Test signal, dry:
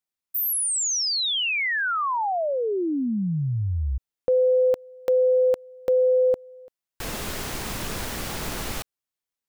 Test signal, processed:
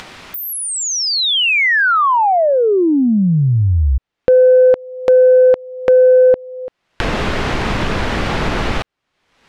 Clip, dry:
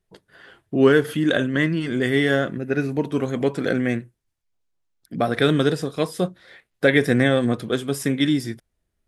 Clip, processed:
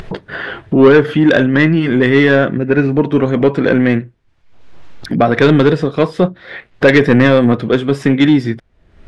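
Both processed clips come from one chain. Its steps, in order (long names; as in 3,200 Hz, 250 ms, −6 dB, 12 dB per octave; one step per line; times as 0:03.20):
low-pass filter 2,900 Hz 12 dB per octave
in parallel at +1 dB: upward compression 4 to 1, threshold −21 dBFS
on the sum: soft clipping −6 dBFS
level +5 dB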